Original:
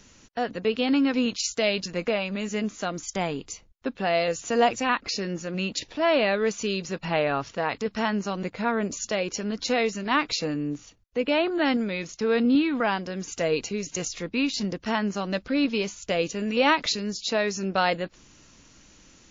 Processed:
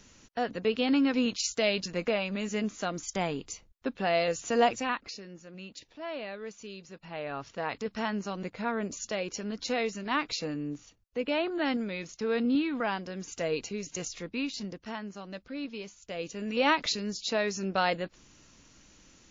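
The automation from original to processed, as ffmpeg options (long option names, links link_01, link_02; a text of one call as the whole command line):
ffmpeg -i in.wav -af "volume=16.5dB,afade=type=out:start_time=4.63:duration=0.59:silence=0.223872,afade=type=in:start_time=7.1:duration=0.59:silence=0.316228,afade=type=out:start_time=14.14:duration=0.91:silence=0.421697,afade=type=in:start_time=16.09:duration=0.61:silence=0.334965" out.wav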